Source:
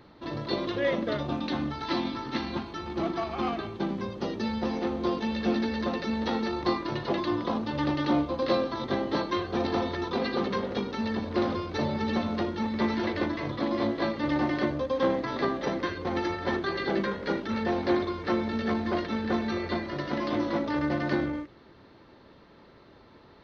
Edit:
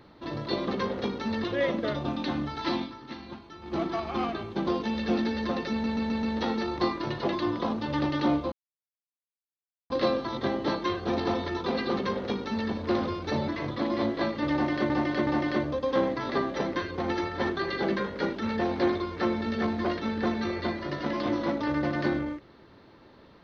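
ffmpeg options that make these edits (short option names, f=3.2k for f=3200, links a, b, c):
-filter_complex "[0:a]asplit=14[a][b][c][d][e][f][g][h][i][j][k][l][m][n];[a]atrim=end=0.682[o];[b]atrim=start=10.408:end=11.172[p];[c]atrim=start=0.678:end=2.21,asetpts=PTS-STARTPTS,afade=t=out:st=1.352:d=0.18:c=qua:silence=0.334965[q];[d]atrim=start=2.21:end=2.81,asetpts=PTS-STARTPTS,volume=-9.5dB[r];[e]atrim=start=2.81:end=3.912,asetpts=PTS-STARTPTS,afade=t=in:d=0.18:c=qua:silence=0.334965[s];[f]atrim=start=5.038:end=6.212[t];[g]atrim=start=6.078:end=6.212[u];[h]atrim=start=6.078:end=6.212[v];[i]atrim=start=6.078:end=6.212[w];[j]atrim=start=6.078:end=8.37,asetpts=PTS-STARTPTS,afade=t=out:st=2.288:d=0.004:c=hsin,apad=pad_dur=1.38[x];[k]atrim=start=8.37:end=11.952,asetpts=PTS-STARTPTS,afade=t=in:d=0.004:c=hsin[y];[l]atrim=start=13.288:end=14.712[z];[m]atrim=start=14.338:end=14.712[aa];[n]atrim=start=14.338[ab];[o][p]acrossfade=d=0.004:c1=hsin:c2=hsin[ac];[q][r][s]concat=n=3:v=0:a=1[ad];[ac][ad]acrossfade=d=0.004:c1=hsin:c2=hsin[ae];[ae][t]acrossfade=d=0.004:c1=hsin:c2=hsin[af];[af][u]acrossfade=d=0.004:c1=hsin:c2=hsin[ag];[ag][v]acrossfade=d=0.004:c1=hsin:c2=hsin[ah];[ah][w]acrossfade=d=0.004:c1=hsin:c2=hsin[ai];[x][y]concat=n=2:v=0:a=1[aj];[ai][aj]acrossfade=d=0.004:c1=hsin:c2=hsin[ak];[ak][z]acrossfade=d=0.004:c1=hsin:c2=hsin[al];[al][aa]acrossfade=d=0.004:c1=hsin:c2=hsin[am];[am][ab]acrossfade=d=0.004:c1=hsin:c2=hsin"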